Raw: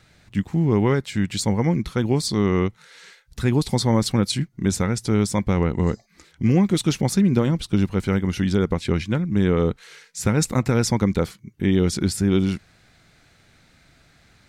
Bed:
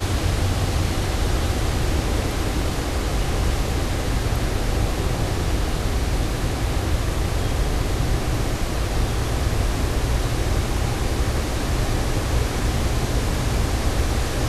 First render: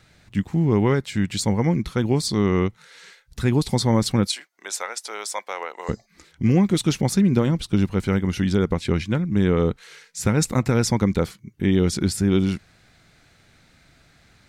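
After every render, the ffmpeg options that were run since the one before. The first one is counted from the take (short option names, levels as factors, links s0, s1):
-filter_complex "[0:a]asettb=1/sr,asplit=3[s0][s1][s2];[s0]atrim=end=4.274[s3];[s1]atrim=start=4.27:end=5.89,asetpts=PTS-STARTPTS,afade=t=in:d=0.004:c=qsin,afade=t=out:st=1.616:d=0.004:c=qsin,highpass=f=600:w=0.5412,highpass=f=600:w=1.3066[s4];[s2]atrim=start=5.886[s5];[s3][s4]acrossfade=d=0.004:c1=hsin:c2=qsin[s6];[s6][s5]acrossfade=d=0.004:c1=qsin:c2=hsin"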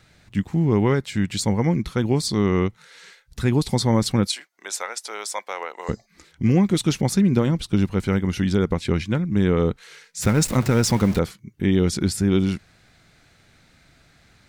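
-filter_complex "[0:a]asettb=1/sr,asplit=3[s0][s1][s2];[s0]atrim=end=10.224[s3];[s1]atrim=start=10.22:end=11.19,asetpts=PTS-STARTPTS,afade=t=in:d=0.004:c=qsin,afade=t=out:st=0.966:d=0.004:c=qsin,aeval=exprs='val(0)+0.5*0.0422*sgn(val(0))':c=same[s4];[s2]atrim=start=11.186[s5];[s3][s4]acrossfade=d=0.004:c1=hsin:c2=qsin[s6];[s6][s5]acrossfade=d=0.004:c1=qsin:c2=hsin"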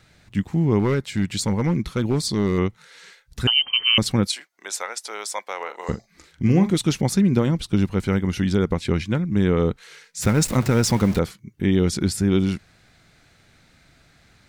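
-filter_complex "[0:a]asettb=1/sr,asplit=3[s0][s1][s2];[s0]atrim=end=0.794[s3];[s1]atrim=start=0.79:end=2.58,asetpts=PTS-STARTPTS,afade=t=in:d=0.004:c=qsin,afade=t=out:st=1.786:d=0.004:c=qsin,asoftclip=type=hard:threshold=0.2[s4];[s2]atrim=start=2.576[s5];[s3][s4]acrossfade=d=0.004:c1=hsin:c2=qsin[s6];[s6][s5]acrossfade=d=0.004:c1=qsin:c2=hsin,asettb=1/sr,asplit=3[s7][s8][s9];[s7]atrim=end=3.474[s10];[s8]atrim=start=3.47:end=3.98,asetpts=PTS-STARTPTS,afade=t=in:d=0.004:c=qsin,afade=t=out:st=0.506:d=0.004:c=qsin,lowpass=f=2700:t=q:w=0.5098,lowpass=f=2700:t=q:w=0.6013,lowpass=f=2700:t=q:w=0.9,lowpass=f=2700:t=q:w=2.563,afreqshift=-3200[s11];[s9]atrim=start=3.976[s12];[s10][s11]acrossfade=d=0.004:c1=hsin:c2=qsin[s13];[s13][s12]acrossfade=d=0.004:c1=qsin:c2=hsin,asettb=1/sr,asplit=3[s14][s15][s16];[s14]atrim=end=5.564[s17];[s15]atrim=start=5.56:end=6.71,asetpts=PTS-STARTPTS,afade=t=in:d=0.004:c=qsin,afade=t=out:st=1.146:d=0.004:c=qsin,asplit=2[s18][s19];[s19]adelay=42,volume=0.316[s20];[s18][s20]amix=inputs=2:normalize=0,atrim=end_sample=50715[s21];[s16]atrim=start=6.706[s22];[s17][s21]acrossfade=d=0.004:c1=hsin:c2=qsin[s23];[s23][s22]acrossfade=d=0.004:c1=qsin:c2=hsin"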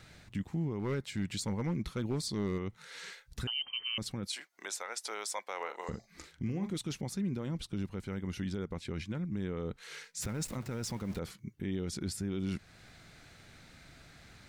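-af "areverse,acompressor=threshold=0.0447:ratio=4,areverse,alimiter=level_in=1.33:limit=0.0631:level=0:latency=1:release=290,volume=0.75"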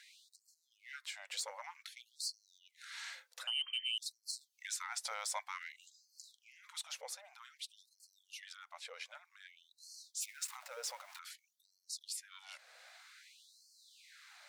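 -af "asoftclip=type=tanh:threshold=0.0422,afftfilt=real='re*gte(b*sr/1024,460*pow(4200/460,0.5+0.5*sin(2*PI*0.53*pts/sr)))':imag='im*gte(b*sr/1024,460*pow(4200/460,0.5+0.5*sin(2*PI*0.53*pts/sr)))':win_size=1024:overlap=0.75"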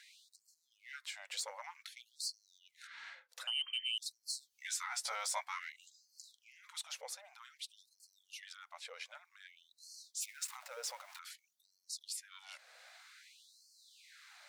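-filter_complex "[0:a]asplit=3[s0][s1][s2];[s0]afade=t=out:st=2.86:d=0.02[s3];[s1]adynamicsmooth=sensitivity=3.5:basefreq=2600,afade=t=in:st=2.86:d=0.02,afade=t=out:st=3.28:d=0.02[s4];[s2]afade=t=in:st=3.28:d=0.02[s5];[s3][s4][s5]amix=inputs=3:normalize=0,asettb=1/sr,asplit=3[s6][s7][s8];[s6]atrim=end=4.194[s9];[s7]atrim=start=4.19:end=5.7,asetpts=PTS-STARTPTS,afade=t=in:d=0.004:c=qsin,afade=t=out:st=1.506:d=0.004:c=qsin,asplit=2[s10][s11];[s11]adelay=14,volume=0.75[s12];[s10][s12]amix=inputs=2:normalize=0,atrim=end_sample=66591[s13];[s8]atrim=start=5.696[s14];[s9][s13]acrossfade=d=0.004:c1=hsin:c2=qsin[s15];[s15][s14]acrossfade=d=0.004:c1=qsin:c2=hsin"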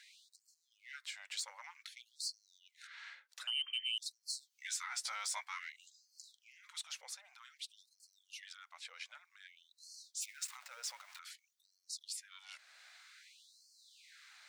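-af "highpass=1200,equalizer=f=12000:t=o:w=0.43:g=-6.5"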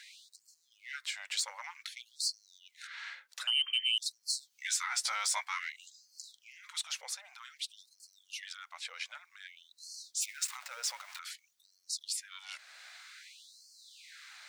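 -af "volume=2.37"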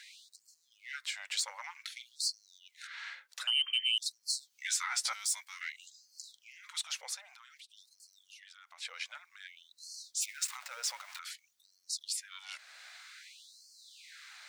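-filter_complex "[0:a]asettb=1/sr,asplit=3[s0][s1][s2];[s0]atrim=end=1.724[s3];[s1]atrim=start=1.72:end=2.16,asetpts=PTS-STARTPTS,afade=t=in:d=0.004:c=qsin,afade=t=out:st=0.436:d=0.004:c=qsin,asplit=2[s4][s5];[s5]adelay=45,volume=0.224[s6];[s4][s6]amix=inputs=2:normalize=0,atrim=end_sample=19404[s7];[s2]atrim=start=2.156[s8];[s3][s7]acrossfade=d=0.004:c1=hsin:c2=qsin[s9];[s9][s8]acrossfade=d=0.004:c1=qsin:c2=hsin,asettb=1/sr,asplit=3[s10][s11][s12];[s10]atrim=end=5.134[s13];[s11]atrim=start=5.13:end=5.61,asetpts=PTS-STARTPTS,afade=t=in:d=0.004:c=qsin,afade=t=out:st=0.476:d=0.004:c=qsin,aderivative[s14];[s12]atrim=start=5.606[s15];[s13][s14]acrossfade=d=0.004:c1=hsin:c2=qsin[s16];[s16][s15]acrossfade=d=0.004:c1=qsin:c2=hsin,asettb=1/sr,asplit=3[s17][s18][s19];[s17]atrim=end=7.224[s20];[s18]atrim=start=7.22:end=8.78,asetpts=PTS-STARTPTS,afade=t=in:d=0.004:c=qsin,afade=t=out:st=1.556:d=0.004:c=qsin,acompressor=threshold=0.00251:ratio=5:attack=3.2:release=140:knee=1:detection=peak[s21];[s19]atrim=start=8.776[s22];[s20][s21]acrossfade=d=0.004:c1=hsin:c2=qsin[s23];[s23][s22]acrossfade=d=0.004:c1=qsin:c2=hsin"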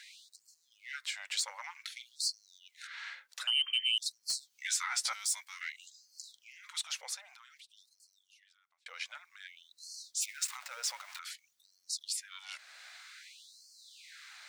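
-filter_complex "[0:a]asettb=1/sr,asplit=3[s0][s1][s2];[s0]atrim=end=4.234[s3];[s1]atrim=start=4.23:end=4.67,asetpts=PTS-STARTPTS,afade=t=in:d=0.004:c=qsin,afade=t=out:st=0.436:d=0.004:c=qsin,volume=23.7,asoftclip=hard,volume=0.0422[s4];[s2]atrim=start=4.666[s5];[s3][s4]acrossfade=d=0.004:c1=hsin:c2=qsin[s6];[s6][s5]acrossfade=d=0.004:c1=qsin:c2=hsin,asplit=2[s7][s8];[s7]atrim=end=8.86,asetpts=PTS-STARTPTS,afade=t=out:st=7.33:d=1.53[s9];[s8]atrim=start=8.86,asetpts=PTS-STARTPTS,afade=t=in:d=0.004:c=hsin[s10];[s9][s10]concat=n=2:v=0:a=1"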